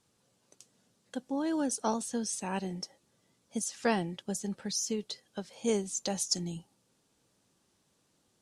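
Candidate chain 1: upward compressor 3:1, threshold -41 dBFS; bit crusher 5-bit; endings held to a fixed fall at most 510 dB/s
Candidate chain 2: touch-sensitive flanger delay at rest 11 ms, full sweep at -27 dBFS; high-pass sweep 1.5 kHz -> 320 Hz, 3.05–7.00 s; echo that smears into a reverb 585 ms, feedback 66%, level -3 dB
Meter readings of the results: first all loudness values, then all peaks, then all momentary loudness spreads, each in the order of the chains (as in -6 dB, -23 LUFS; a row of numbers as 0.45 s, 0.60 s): -36.0 LUFS, -36.5 LUFS; -14.0 dBFS, -16.0 dBFS; 17 LU, 12 LU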